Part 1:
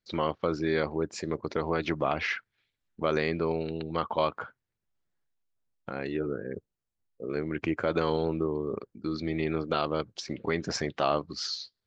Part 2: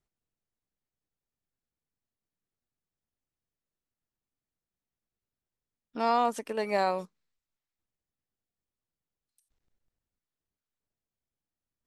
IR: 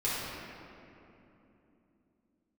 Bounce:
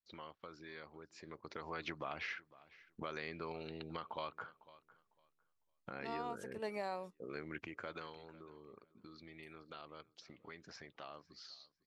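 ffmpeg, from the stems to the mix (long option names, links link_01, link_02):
-filter_complex "[0:a]acrossover=split=920|5200[link_01][link_02][link_03];[link_01]acompressor=threshold=-39dB:ratio=4[link_04];[link_02]acompressor=threshold=-34dB:ratio=4[link_05];[link_03]acompressor=threshold=-57dB:ratio=4[link_06];[link_04][link_05][link_06]amix=inputs=3:normalize=0,volume=-5.5dB,afade=type=in:start_time=1.15:duration=0.7:silence=0.316228,afade=type=out:start_time=7.77:duration=0.37:silence=0.281838,asplit=3[link_07][link_08][link_09];[link_08]volume=-22dB[link_10];[1:a]adelay=50,volume=-9.5dB[link_11];[link_09]apad=whole_len=525565[link_12];[link_11][link_12]sidechaincompress=threshold=-47dB:ratio=8:attack=16:release=134[link_13];[link_10]aecho=0:1:502|1004|1506:1|0.19|0.0361[link_14];[link_07][link_13][link_14]amix=inputs=3:normalize=0,alimiter=level_in=6dB:limit=-24dB:level=0:latency=1:release=494,volume=-6dB"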